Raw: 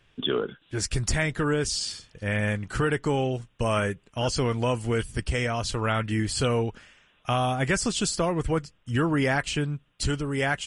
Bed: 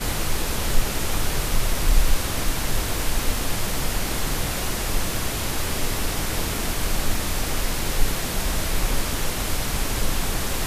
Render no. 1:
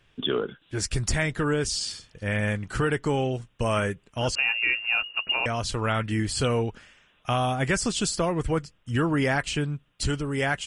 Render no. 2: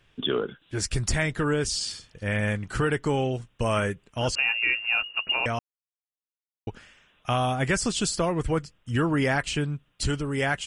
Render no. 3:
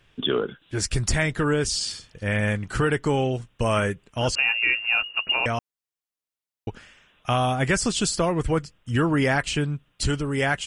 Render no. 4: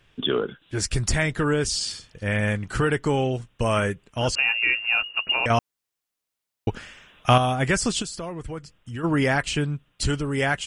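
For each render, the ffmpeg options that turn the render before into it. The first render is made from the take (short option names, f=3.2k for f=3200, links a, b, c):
-filter_complex "[0:a]asettb=1/sr,asplit=3[a][b][c];[a]atrim=end=4.354[d];[b]atrim=start=4.35:end=5.46,asetpts=PTS-STARTPTS,afade=t=in:d=0.004:c=qsin,afade=t=out:st=1.106:d=0.004:c=qsin,lowpass=f=2.5k:t=q:w=0.5098,lowpass=f=2.5k:t=q:w=0.6013,lowpass=f=2.5k:t=q:w=0.9,lowpass=f=2.5k:t=q:w=2.563,afreqshift=-2900[e];[c]atrim=start=5.456[f];[d][e]acrossfade=d=0.004:c1=hsin:c2=qsin[g];[g][f]acrossfade=d=0.004:c1=qsin:c2=hsin"
-filter_complex "[0:a]asplit=3[a][b][c];[a]atrim=end=5.59,asetpts=PTS-STARTPTS,afade=t=out:st=5.586:d=0.004:c=hsin[d];[b]atrim=start=5.59:end=6.67,asetpts=PTS-STARTPTS,volume=0[e];[c]atrim=start=6.67,asetpts=PTS-STARTPTS,afade=t=in:d=0.004:c=hsin[f];[d][e][f]concat=n=3:v=0:a=1"
-af "volume=2.5dB"
-filter_complex "[0:a]asettb=1/sr,asplit=3[a][b][c];[a]atrim=end=5.504[d];[b]atrim=start=5.5:end=7.38,asetpts=PTS-STARTPTS,afade=t=in:d=0.004:c=qsin,afade=t=out:st=1.876:d=0.004:c=qsin,acontrast=80[e];[c]atrim=start=7.376[f];[d][e]acrossfade=d=0.004:c1=hsin:c2=qsin[g];[g][f]acrossfade=d=0.004:c1=qsin:c2=hsin,asplit=3[h][i][j];[h]afade=t=out:st=8.01:d=0.02[k];[i]acompressor=threshold=-38dB:ratio=2:attack=3.2:release=140:knee=1:detection=peak,afade=t=in:st=8.01:d=0.02,afade=t=out:st=9.03:d=0.02[l];[j]afade=t=in:st=9.03:d=0.02[m];[k][l][m]amix=inputs=3:normalize=0"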